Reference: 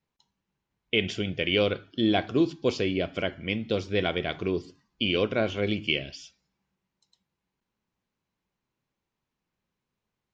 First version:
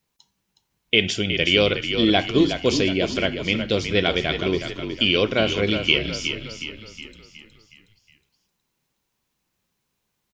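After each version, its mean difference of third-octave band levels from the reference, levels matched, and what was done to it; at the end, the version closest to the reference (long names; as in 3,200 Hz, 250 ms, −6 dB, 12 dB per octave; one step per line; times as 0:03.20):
5.5 dB: high-shelf EQ 4,000 Hz +12 dB
echo with shifted repeats 366 ms, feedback 49%, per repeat −36 Hz, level −8 dB
level +4.5 dB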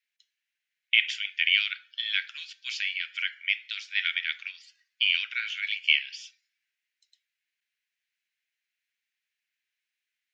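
18.0 dB: Butterworth high-pass 1,600 Hz 48 dB per octave
parametric band 2,200 Hz +7 dB 1.3 octaves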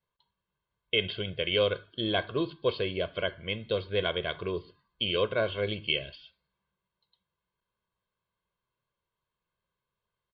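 3.0 dB: Chebyshev low-pass with heavy ripple 4,600 Hz, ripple 6 dB
comb filter 1.9 ms, depth 65%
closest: third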